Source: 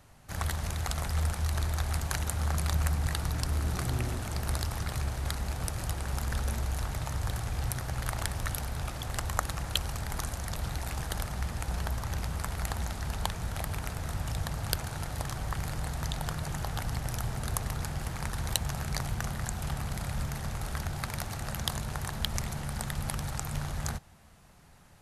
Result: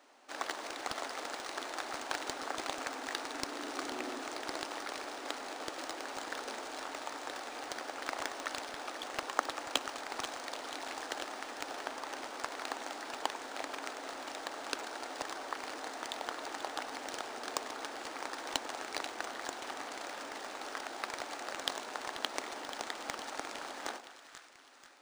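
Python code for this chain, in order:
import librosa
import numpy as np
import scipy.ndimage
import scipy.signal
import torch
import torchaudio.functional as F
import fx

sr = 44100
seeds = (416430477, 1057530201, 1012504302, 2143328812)

y = fx.tracing_dist(x, sr, depth_ms=0.15)
y = scipy.signal.sosfilt(scipy.signal.ellip(4, 1.0, 40, 270.0, 'highpass', fs=sr, output='sos'), y)
y = fx.echo_split(y, sr, split_hz=1200.0, low_ms=96, high_ms=486, feedback_pct=52, wet_db=-11.0)
y = np.interp(np.arange(len(y)), np.arange(len(y))[::3], y[::3])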